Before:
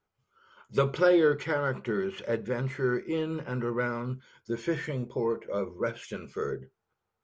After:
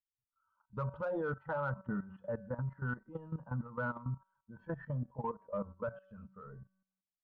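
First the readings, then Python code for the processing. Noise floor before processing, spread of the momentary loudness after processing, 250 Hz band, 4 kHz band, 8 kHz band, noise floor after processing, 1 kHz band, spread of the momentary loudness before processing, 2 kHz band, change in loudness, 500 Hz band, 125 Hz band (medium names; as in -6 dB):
-83 dBFS, 15 LU, -11.0 dB, under -25 dB, no reading, under -85 dBFS, -6.5 dB, 11 LU, -10.0 dB, -10.0 dB, -13.0 dB, -4.5 dB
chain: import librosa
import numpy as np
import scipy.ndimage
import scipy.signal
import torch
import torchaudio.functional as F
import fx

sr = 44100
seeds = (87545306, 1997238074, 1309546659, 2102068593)

p1 = fx.bin_expand(x, sr, power=1.5)
p2 = scipy.signal.sosfilt(scipy.signal.butter(4, 1600.0, 'lowpass', fs=sr, output='sos'), p1)
p3 = fx.fixed_phaser(p2, sr, hz=910.0, stages=4)
p4 = fx.comb_fb(p3, sr, f0_hz=190.0, decay_s=0.74, harmonics='all', damping=0.0, mix_pct=60)
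p5 = 10.0 ** (-39.5 / 20.0) * np.tanh(p4 / 10.0 ** (-39.5 / 20.0))
p6 = p4 + (p5 * 10.0 ** (-7.5 / 20.0))
p7 = fx.level_steps(p6, sr, step_db=15)
y = p7 * 10.0 ** (10.0 / 20.0)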